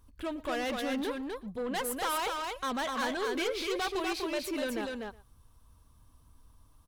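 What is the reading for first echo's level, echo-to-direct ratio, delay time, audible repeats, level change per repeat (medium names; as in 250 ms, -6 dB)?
-20.5 dB, -3.5 dB, 118 ms, 3, no regular repeats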